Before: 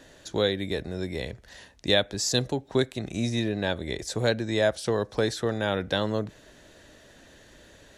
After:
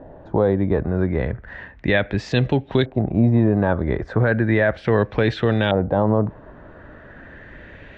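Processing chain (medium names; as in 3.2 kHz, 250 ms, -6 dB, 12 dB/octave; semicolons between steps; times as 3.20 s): tone controls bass +6 dB, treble -9 dB; LFO low-pass saw up 0.35 Hz 740–3300 Hz; peak limiter -15 dBFS, peak gain reduction 7.5 dB; trim +8 dB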